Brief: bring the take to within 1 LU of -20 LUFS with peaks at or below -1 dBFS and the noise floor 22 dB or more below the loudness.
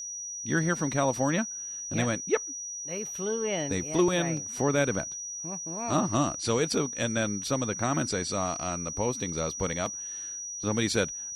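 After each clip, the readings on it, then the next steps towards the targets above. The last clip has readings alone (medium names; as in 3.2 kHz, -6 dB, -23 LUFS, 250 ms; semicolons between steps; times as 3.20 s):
dropouts 1; longest dropout 2.8 ms; steady tone 5.8 kHz; tone level -35 dBFS; loudness -29.0 LUFS; peak level -12.0 dBFS; loudness target -20.0 LUFS
-> interpolate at 4.37 s, 2.8 ms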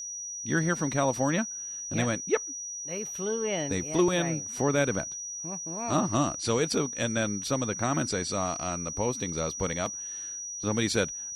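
dropouts 0; steady tone 5.8 kHz; tone level -35 dBFS
-> band-stop 5.8 kHz, Q 30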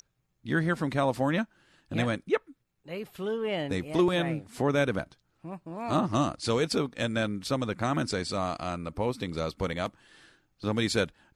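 steady tone not found; loudness -30.0 LUFS; peak level -12.5 dBFS; loudness target -20.0 LUFS
-> trim +10 dB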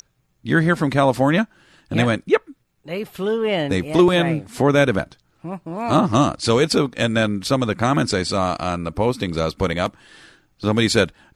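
loudness -20.0 LUFS; peak level -2.5 dBFS; noise floor -65 dBFS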